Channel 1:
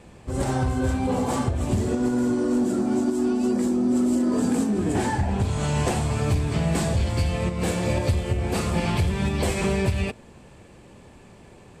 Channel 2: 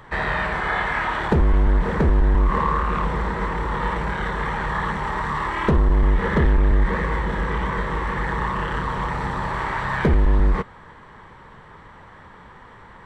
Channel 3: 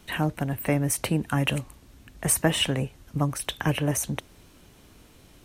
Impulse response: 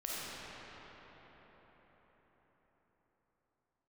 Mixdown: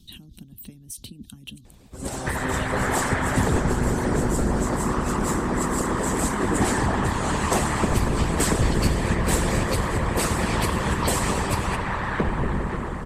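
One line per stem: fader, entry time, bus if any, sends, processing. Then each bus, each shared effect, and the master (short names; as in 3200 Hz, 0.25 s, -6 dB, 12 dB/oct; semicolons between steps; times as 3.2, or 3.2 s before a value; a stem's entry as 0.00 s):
-7.0 dB, 1.65 s, no bus, send -5.5 dB, high shelf 5900 Hz +10 dB; AGC gain up to 10 dB
-1.0 dB, 2.15 s, bus A, send -3.5 dB, dry
-8.0 dB, 0.00 s, bus A, no send, EQ curve 260 Hz 0 dB, 550 Hz -27 dB, 2100 Hz -28 dB, 3500 Hz 0 dB, 6900 Hz -7 dB; fast leveller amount 50%
bus A: 0.0 dB, compressor, threshold -25 dBFS, peak gain reduction 10 dB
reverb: on, RT60 5.3 s, pre-delay 10 ms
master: harmonic-percussive split harmonic -17 dB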